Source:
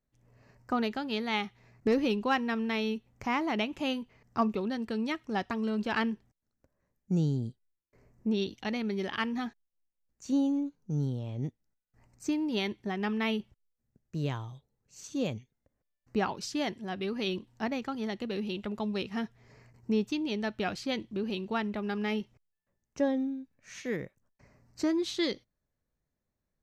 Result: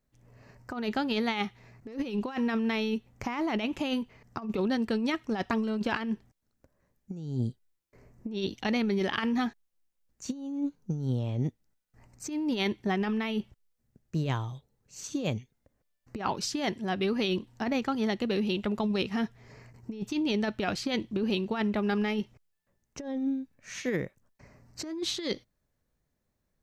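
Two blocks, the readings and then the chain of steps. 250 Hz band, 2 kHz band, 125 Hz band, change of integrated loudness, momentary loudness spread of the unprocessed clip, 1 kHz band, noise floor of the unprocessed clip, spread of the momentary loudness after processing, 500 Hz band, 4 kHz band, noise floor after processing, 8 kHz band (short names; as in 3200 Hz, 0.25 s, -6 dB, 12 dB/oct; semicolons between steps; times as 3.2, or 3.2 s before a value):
+1.5 dB, +0.5 dB, +2.0 dB, +1.5 dB, 9 LU, 0.0 dB, -84 dBFS, 13 LU, +1.0 dB, +2.0 dB, -79 dBFS, +5.0 dB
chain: negative-ratio compressor -32 dBFS, ratio -0.5; gain +3.5 dB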